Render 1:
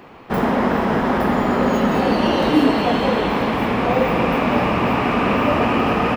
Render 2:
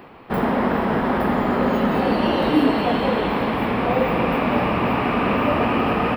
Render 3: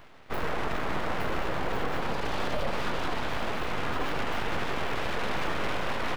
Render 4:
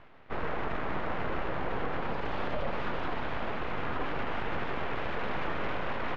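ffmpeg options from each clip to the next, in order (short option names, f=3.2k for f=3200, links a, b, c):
-af "equalizer=f=6.4k:w=2.4:g=-13.5,areverse,acompressor=mode=upward:threshold=-31dB:ratio=2.5,areverse,volume=-2dB"
-af "alimiter=limit=-12dB:level=0:latency=1:release=37,aeval=exprs='abs(val(0))':c=same,volume=-6.5dB"
-af "lowpass=2.7k,volume=-2.5dB"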